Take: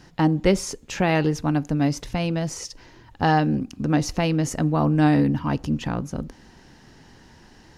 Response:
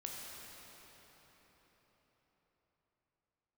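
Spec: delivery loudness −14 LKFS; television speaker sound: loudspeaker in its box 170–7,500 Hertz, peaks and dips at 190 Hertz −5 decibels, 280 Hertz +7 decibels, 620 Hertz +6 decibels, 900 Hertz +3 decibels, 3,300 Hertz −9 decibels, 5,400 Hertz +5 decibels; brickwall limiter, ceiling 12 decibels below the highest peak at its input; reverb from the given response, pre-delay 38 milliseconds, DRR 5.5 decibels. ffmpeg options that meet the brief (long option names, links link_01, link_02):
-filter_complex "[0:a]alimiter=limit=-18dB:level=0:latency=1,asplit=2[link_01][link_02];[1:a]atrim=start_sample=2205,adelay=38[link_03];[link_02][link_03]afir=irnorm=-1:irlink=0,volume=-4.5dB[link_04];[link_01][link_04]amix=inputs=2:normalize=0,highpass=frequency=170:width=0.5412,highpass=frequency=170:width=1.3066,equalizer=frequency=190:width_type=q:width=4:gain=-5,equalizer=frequency=280:width_type=q:width=4:gain=7,equalizer=frequency=620:width_type=q:width=4:gain=6,equalizer=frequency=900:width_type=q:width=4:gain=3,equalizer=frequency=3300:width_type=q:width=4:gain=-9,equalizer=frequency=5400:width_type=q:width=4:gain=5,lowpass=frequency=7500:width=0.5412,lowpass=frequency=7500:width=1.3066,volume=11.5dB"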